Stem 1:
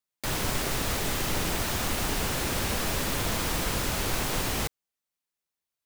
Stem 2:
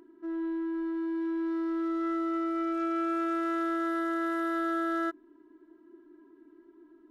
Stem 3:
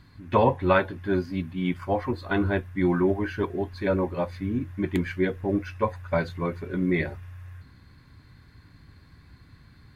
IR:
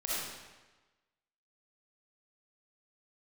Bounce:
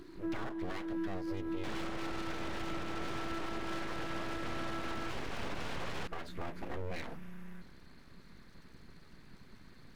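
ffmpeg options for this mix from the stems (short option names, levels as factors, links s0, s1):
-filter_complex "[0:a]lowpass=2600,adelay=1400,volume=1.26[s0];[1:a]volume=1.26[s1];[2:a]acompressor=threshold=0.0355:ratio=6,volume=0.841,asplit=2[s2][s3];[s3]apad=whole_len=313179[s4];[s1][s4]sidechaincompress=threshold=0.0112:ratio=8:attack=16:release=519[s5];[s0][s2]amix=inputs=2:normalize=0,aeval=exprs='abs(val(0))':c=same,alimiter=limit=0.0891:level=0:latency=1:release=279,volume=1[s6];[s5][s6]amix=inputs=2:normalize=0,alimiter=level_in=1.68:limit=0.0631:level=0:latency=1:release=95,volume=0.596"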